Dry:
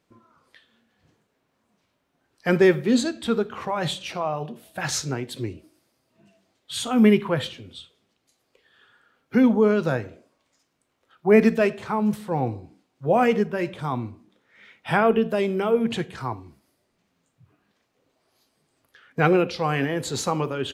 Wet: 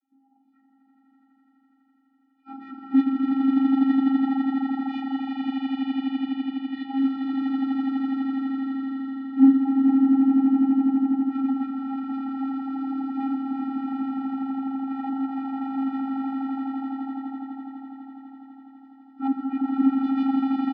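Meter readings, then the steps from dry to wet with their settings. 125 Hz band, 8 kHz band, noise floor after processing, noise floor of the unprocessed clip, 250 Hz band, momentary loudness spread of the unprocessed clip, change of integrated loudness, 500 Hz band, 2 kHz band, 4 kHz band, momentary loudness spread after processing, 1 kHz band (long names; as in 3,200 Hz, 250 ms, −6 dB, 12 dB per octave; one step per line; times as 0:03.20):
below −20 dB, below −40 dB, −63 dBFS, −73 dBFS, +4.0 dB, 15 LU, −1.5 dB, below −25 dB, −13.0 dB, below −10 dB, 12 LU, −5.0 dB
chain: partials spread apart or drawn together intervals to 76%
low-shelf EQ 180 Hz −11.5 dB
mains-hum notches 50/100/150/200/250 Hz
comb filter 3.6 ms, depth 78%
echo that builds up and dies away 83 ms, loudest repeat 8, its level −4 dB
gain into a clipping stage and back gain 17.5 dB
channel vocoder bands 32, square 269 Hz
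high-frequency loss of the air 180 metres
reverb whose tail is shaped and stops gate 220 ms rising, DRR 9.5 dB
expander for the loud parts 1.5 to 1, over −29 dBFS
level +1 dB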